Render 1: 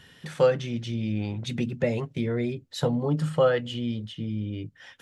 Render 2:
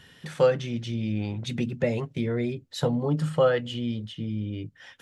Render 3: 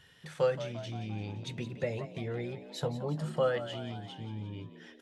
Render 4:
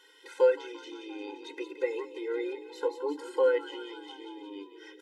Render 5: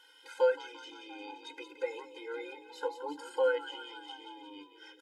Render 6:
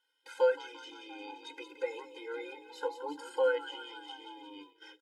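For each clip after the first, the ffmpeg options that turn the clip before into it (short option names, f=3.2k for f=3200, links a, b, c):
-af anull
-filter_complex "[0:a]equalizer=f=240:t=o:w=0.7:g=-7.5,asplit=2[a][b];[b]asplit=7[c][d][e][f][g][h][i];[c]adelay=173,afreqshift=69,volume=-13dB[j];[d]adelay=346,afreqshift=138,volume=-17.4dB[k];[e]adelay=519,afreqshift=207,volume=-21.9dB[l];[f]adelay=692,afreqshift=276,volume=-26.3dB[m];[g]adelay=865,afreqshift=345,volume=-30.7dB[n];[h]adelay=1038,afreqshift=414,volume=-35.2dB[o];[i]adelay=1211,afreqshift=483,volume=-39.6dB[p];[j][k][l][m][n][o][p]amix=inputs=7:normalize=0[q];[a][q]amix=inputs=2:normalize=0,volume=-7dB"
-filter_complex "[0:a]acrossover=split=2500[a][b];[b]acompressor=threshold=-53dB:ratio=4:attack=1:release=60[c];[a][c]amix=inputs=2:normalize=0,afftfilt=real='re*eq(mod(floor(b*sr/1024/270),2),1)':imag='im*eq(mod(floor(b*sr/1024/270),2),1)':win_size=1024:overlap=0.75,volume=6.5dB"
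-af "aecho=1:1:1.3:0.78,volume=-3dB"
-af "agate=range=-19dB:threshold=-55dB:ratio=16:detection=peak"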